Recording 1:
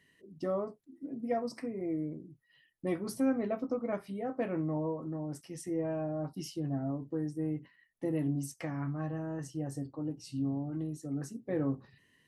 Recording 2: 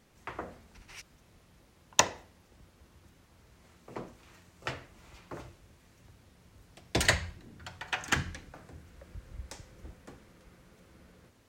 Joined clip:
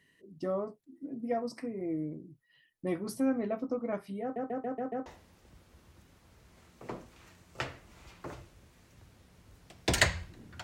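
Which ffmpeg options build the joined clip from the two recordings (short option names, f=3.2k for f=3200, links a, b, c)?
-filter_complex "[0:a]apad=whole_dur=10.63,atrim=end=10.63,asplit=6[a][b][c][d][e][f];[a]atrim=end=4.362[g];[b]atrim=start=4.218:end=4.362[h];[c]atrim=start=4.218:end=4.362[i];[d]atrim=start=4.218:end=4.362[j];[e]atrim=start=4.218:end=4.362[k];[f]atrim=start=4.218:end=4.362[l];[1:a]atrim=start=2.128:end=7.7[m];[g][h]acrossfade=d=0.004:c1=hsin:c2=hsin[n];[n][i]acrossfade=d=0.004:c1=hsin:c2=hsin[o];[o][j]acrossfade=d=0.004:c1=hsin:c2=hsin[p];[p][k]acrossfade=d=0.004:c1=hsin:c2=hsin[q];[q][l]acrossfade=d=0.004:c1=hsin:c2=hsin[r];[r][m]acrossfade=d=0.004:c1=hsin:c2=hsin"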